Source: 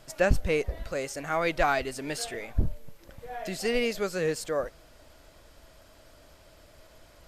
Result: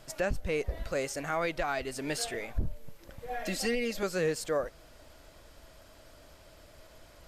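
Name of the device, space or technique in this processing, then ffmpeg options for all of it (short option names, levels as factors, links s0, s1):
stacked limiters: -filter_complex "[0:a]asettb=1/sr,asplit=3[s0][s1][s2];[s0]atrim=end=3.284[s3];[s1]atrim=start=3.28:end=4.03,asetpts=PTS-STARTPTS,afade=t=in:d=0.004:c=qsin,afade=t=out:st=0.746:d=0.004:c=qsin,aecho=1:1:3.7:0.83,atrim=end_sample=33075[s4];[s2]atrim=start=4.026[s5];[s3][s4]acrossfade=d=0.004:c1=hsin:c2=qsin[s6];[s6][s5]acrossfade=d=0.004:c1=qsin:c2=hsin,alimiter=limit=0.178:level=0:latency=1:release=430,alimiter=limit=0.0944:level=0:latency=1:release=261"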